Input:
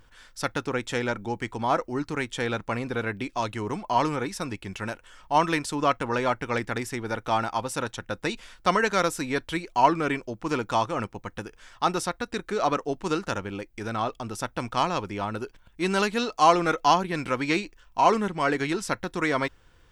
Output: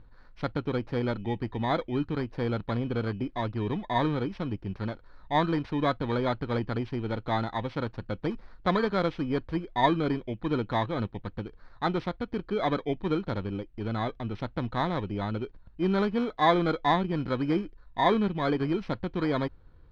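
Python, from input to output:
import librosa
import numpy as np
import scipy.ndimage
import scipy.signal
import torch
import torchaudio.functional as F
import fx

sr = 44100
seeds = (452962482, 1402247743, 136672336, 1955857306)

y = fx.bit_reversed(x, sr, seeds[0], block=16)
y = scipy.signal.sosfilt(scipy.signal.butter(4, 3500.0, 'lowpass', fs=sr, output='sos'), y)
y = fx.low_shelf(y, sr, hz=330.0, db=9.5)
y = y * librosa.db_to_amplitude(-4.5)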